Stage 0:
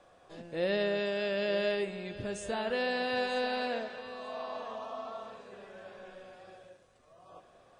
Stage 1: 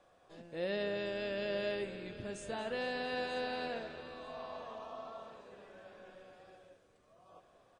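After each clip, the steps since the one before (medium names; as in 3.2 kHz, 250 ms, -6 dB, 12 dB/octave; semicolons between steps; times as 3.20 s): frequency-shifting echo 230 ms, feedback 60%, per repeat -86 Hz, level -15 dB; trim -6 dB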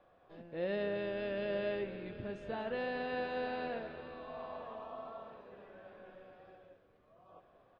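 distance through air 320 m; trim +1.5 dB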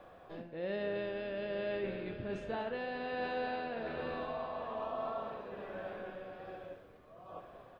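reverse; compression 5:1, threshold -46 dBFS, peak gain reduction 13 dB; reverse; tremolo 1.2 Hz, depth 29%; flutter echo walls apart 9.8 m, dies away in 0.29 s; trim +11 dB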